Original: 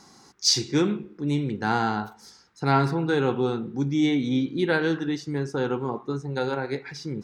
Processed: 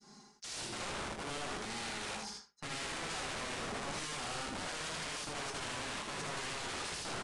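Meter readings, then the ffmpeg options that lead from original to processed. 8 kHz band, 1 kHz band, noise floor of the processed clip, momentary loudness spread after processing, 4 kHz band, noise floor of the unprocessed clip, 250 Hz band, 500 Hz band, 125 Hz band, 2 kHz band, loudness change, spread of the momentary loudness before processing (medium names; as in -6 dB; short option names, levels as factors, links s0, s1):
-8.0 dB, -12.0 dB, -61 dBFS, 3 LU, -9.5 dB, -54 dBFS, -22.5 dB, -18.0 dB, -21.0 dB, -9.0 dB, -14.0 dB, 8 LU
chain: -af "agate=range=0.0224:threshold=0.00631:ratio=3:detection=peak,adynamicequalizer=threshold=0.0112:dfrequency=940:dqfactor=1.1:tfrequency=940:tqfactor=1.1:attack=5:release=100:ratio=0.375:range=4:mode=boostabove:tftype=bell,aecho=1:1:4.9:0.95,areverse,acompressor=threshold=0.0282:ratio=5,areverse,alimiter=level_in=2.99:limit=0.0631:level=0:latency=1:release=10,volume=0.335,aeval=exprs='(mod(94.4*val(0)+1,2)-1)/94.4':c=same,aecho=1:1:60|79:0.447|0.631,aresample=22050,aresample=44100,volume=1.26"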